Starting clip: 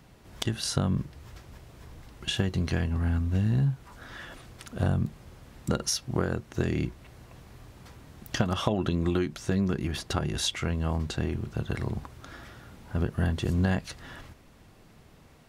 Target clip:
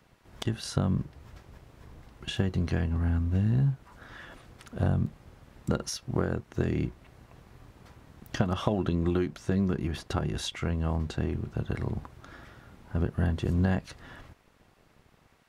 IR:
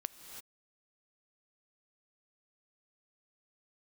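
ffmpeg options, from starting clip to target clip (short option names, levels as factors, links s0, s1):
-filter_complex "[0:a]highshelf=f=2200:g=-8,acrossover=split=960[s0][s1];[s0]aeval=exprs='sgn(val(0))*max(abs(val(0))-0.00158,0)':c=same[s2];[s2][s1]amix=inputs=2:normalize=0"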